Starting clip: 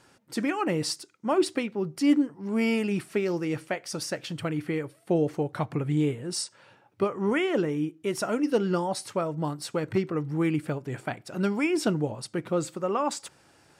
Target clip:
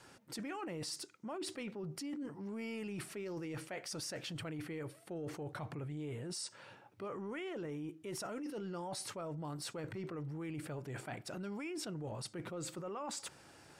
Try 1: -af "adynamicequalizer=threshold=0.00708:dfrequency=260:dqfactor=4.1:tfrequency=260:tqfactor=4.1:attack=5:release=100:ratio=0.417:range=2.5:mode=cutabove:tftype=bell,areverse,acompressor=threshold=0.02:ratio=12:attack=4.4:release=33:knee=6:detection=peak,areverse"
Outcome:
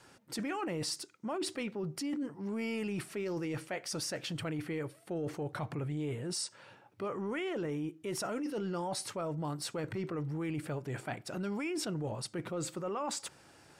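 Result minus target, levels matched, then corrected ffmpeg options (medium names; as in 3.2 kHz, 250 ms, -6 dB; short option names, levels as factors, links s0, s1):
compression: peak gain reduction -6.5 dB
-af "adynamicequalizer=threshold=0.00708:dfrequency=260:dqfactor=4.1:tfrequency=260:tqfactor=4.1:attack=5:release=100:ratio=0.417:range=2.5:mode=cutabove:tftype=bell,areverse,acompressor=threshold=0.00891:ratio=12:attack=4.4:release=33:knee=6:detection=peak,areverse"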